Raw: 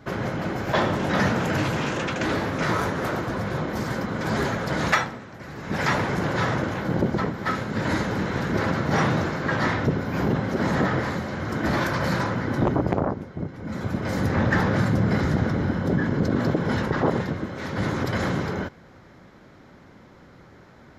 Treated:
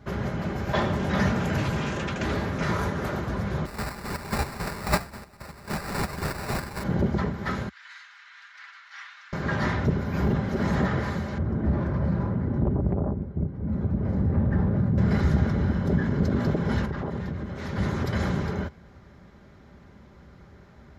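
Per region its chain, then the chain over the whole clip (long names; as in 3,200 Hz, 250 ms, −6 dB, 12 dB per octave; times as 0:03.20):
0:03.65–0:06.82: spectral envelope flattened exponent 0.3 + square-wave tremolo 3.7 Hz, depth 60%, duty 40% + sample-rate reduction 3,200 Hz
0:07.69–0:09.33: Bessel high-pass filter 2,300 Hz, order 6 + head-to-tape spacing loss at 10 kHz 21 dB
0:11.38–0:14.98: low-pass filter 1,100 Hz 6 dB per octave + tilt shelving filter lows +5.5 dB, about 780 Hz + downward compressor 2 to 1, threshold −23 dBFS
0:16.85–0:17.56: bass and treble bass +2 dB, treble −3 dB + downward compressor 2.5 to 1, threshold −28 dBFS
whole clip: parametric band 68 Hz +15 dB 1.4 octaves; comb filter 5 ms, depth 35%; level −5 dB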